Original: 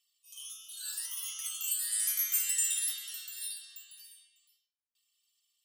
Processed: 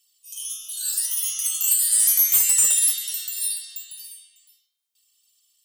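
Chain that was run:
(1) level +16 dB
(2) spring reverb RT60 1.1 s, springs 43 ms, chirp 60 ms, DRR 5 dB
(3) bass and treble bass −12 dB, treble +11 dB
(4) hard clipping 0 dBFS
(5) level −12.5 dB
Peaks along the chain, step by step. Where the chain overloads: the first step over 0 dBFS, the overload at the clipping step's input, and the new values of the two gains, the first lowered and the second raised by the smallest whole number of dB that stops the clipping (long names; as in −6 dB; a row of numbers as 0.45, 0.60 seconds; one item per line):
−2.5, −2.0, +8.5, 0.0, −12.5 dBFS
step 3, 8.5 dB
step 1 +7 dB, step 5 −3.5 dB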